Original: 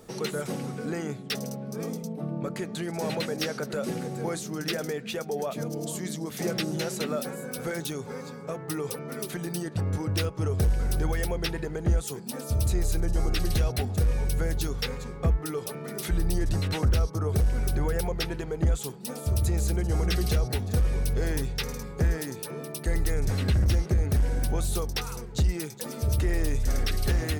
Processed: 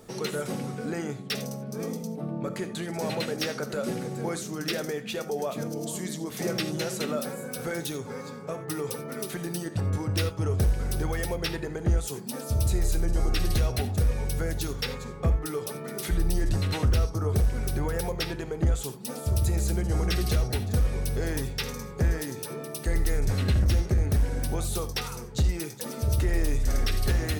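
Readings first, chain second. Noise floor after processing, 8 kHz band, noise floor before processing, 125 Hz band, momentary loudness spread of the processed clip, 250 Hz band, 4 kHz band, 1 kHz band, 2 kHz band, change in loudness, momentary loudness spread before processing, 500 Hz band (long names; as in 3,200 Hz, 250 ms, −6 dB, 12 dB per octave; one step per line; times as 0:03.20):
−39 dBFS, +0.5 dB, −40 dBFS, 0.0 dB, 8 LU, 0.0 dB, +0.5 dB, +0.5 dB, +0.5 dB, 0.0 dB, 8 LU, 0.0 dB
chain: reverb whose tail is shaped and stops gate 110 ms flat, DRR 10 dB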